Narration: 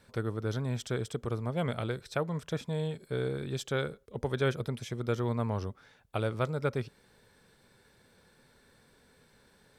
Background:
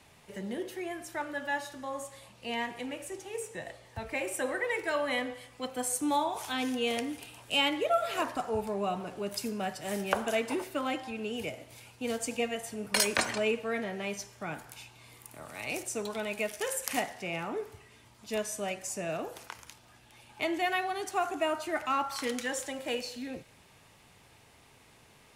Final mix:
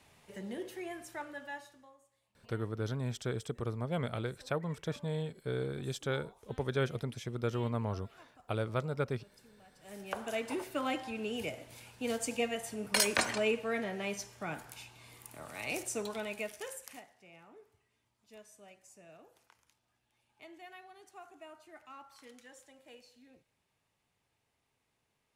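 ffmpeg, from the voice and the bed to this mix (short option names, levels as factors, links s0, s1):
-filter_complex "[0:a]adelay=2350,volume=0.708[s0];[1:a]volume=11.9,afade=t=out:st=0.97:d=1:silence=0.0707946,afade=t=in:st=9.72:d=1.15:silence=0.0501187,afade=t=out:st=15.93:d=1.08:silence=0.1[s1];[s0][s1]amix=inputs=2:normalize=0"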